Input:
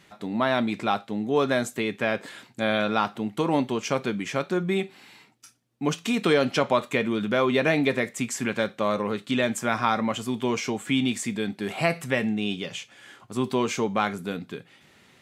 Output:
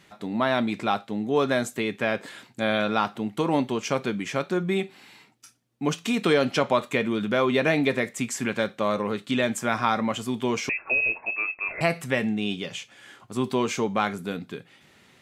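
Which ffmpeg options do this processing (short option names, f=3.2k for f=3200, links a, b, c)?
-filter_complex "[0:a]asettb=1/sr,asplit=3[a][b][c];[a]atrim=end=10.694[d];[b]atrim=start=10.69:end=11.81,asetpts=PTS-STARTPTS,afade=t=in:d=0.004:c=qsin,afade=t=out:st=1.116:d=0.004:c=qsin,lowpass=f=2.4k:t=q:w=0.5098,lowpass=f=2.4k:t=q:w=0.6013,lowpass=f=2.4k:t=q:w=0.9,lowpass=f=2.4k:t=q:w=2.563,afreqshift=-2800[e];[c]atrim=start=11.806[f];[d][e]acrossfade=d=0.004:c1=hsin:c2=qsin[g];[g][f]acrossfade=d=0.004:c1=qsin:c2=hsin"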